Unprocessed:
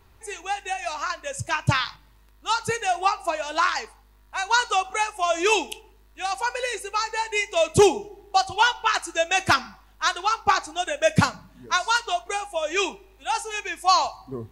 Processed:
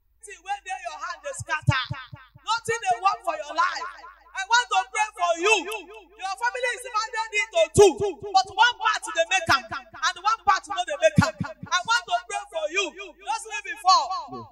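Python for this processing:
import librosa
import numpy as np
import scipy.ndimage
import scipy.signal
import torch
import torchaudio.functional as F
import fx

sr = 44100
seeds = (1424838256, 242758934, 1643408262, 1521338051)

y = fx.bin_expand(x, sr, power=1.5)
y = fx.echo_filtered(y, sr, ms=223, feedback_pct=33, hz=2800.0, wet_db=-12)
y = fx.dynamic_eq(y, sr, hz=1700.0, q=1.6, threshold_db=-44.0, ratio=4.0, max_db=6, at=(5.46, 6.9))
y = y * 10.0 ** (2.5 / 20.0)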